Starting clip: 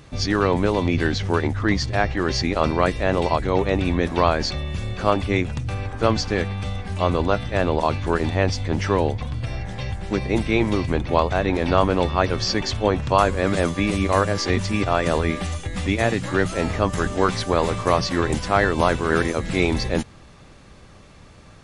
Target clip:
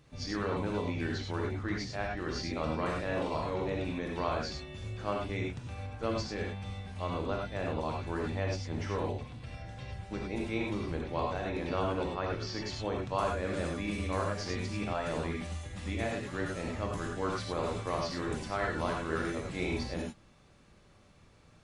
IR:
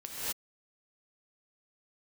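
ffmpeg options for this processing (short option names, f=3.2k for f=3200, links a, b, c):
-filter_complex "[0:a]asettb=1/sr,asplit=3[a][b][c];[a]atrim=end=2.754[d];[b]atrim=start=2.75:end=3.54,asetpts=PTS-STARTPTS,afade=t=in:d=0.004:c=qsin,afade=t=out:st=0.786:d=0.004:c=qsin,asplit=2[e][f];[f]adelay=39,volume=-4dB[g];[e][g]amix=inputs=2:normalize=0,atrim=end_sample=34839[h];[c]atrim=start=3.536[i];[d][h]acrossfade=d=0.004:c1=hsin:c2=qsin[j];[j][i]acrossfade=d=0.004:c1=qsin:c2=hsin,asettb=1/sr,asplit=3[k][l][m];[k]atrim=end=12.064[n];[l]atrim=start=12.06:end=12.6,asetpts=PTS-STARTPTS,afade=t=in:d=0.004:c=qsin,afade=t=out:st=0.536:d=0.004:c=qsin,highshelf=f=6.7k:g=-9[o];[m]atrim=start=12.596[p];[n][o]acrossfade=d=0.004:c1=hsin:c2=qsin[q];[q][p]acrossfade=d=0.004:c1=qsin:c2=hsin[r];[1:a]atrim=start_sample=2205,afade=t=out:st=0.19:d=0.01,atrim=end_sample=8820,asetrate=57330,aresample=44100[s];[r][s]afir=irnorm=-1:irlink=0,volume=-8.5dB"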